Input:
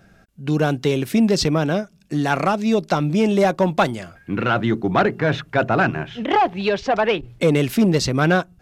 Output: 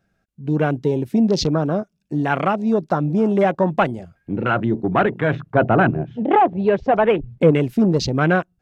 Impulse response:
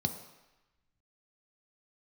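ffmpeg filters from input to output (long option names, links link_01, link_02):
-filter_complex "[0:a]afwtdn=0.0447,asettb=1/sr,asplit=3[link_01][link_02][link_03];[link_01]atrim=end=5.354[link_04];[link_02]atrim=start=5.35:end=7.51,asetpts=PTS-STARTPTS,afade=type=in:duration=0.004:curve=qsin,afade=type=out:start_time=2.156:duration=0.004:curve=qsin,tiltshelf=frequency=1400:gain=4.5[link_05];[link_03]atrim=start=7.506[link_06];[link_04][link_05]acrossfade=duration=0.004:curve1=hsin:curve2=qsin[link_07];[link_07][link_06]acrossfade=duration=0.004:curve1=qsin:curve2=hsin"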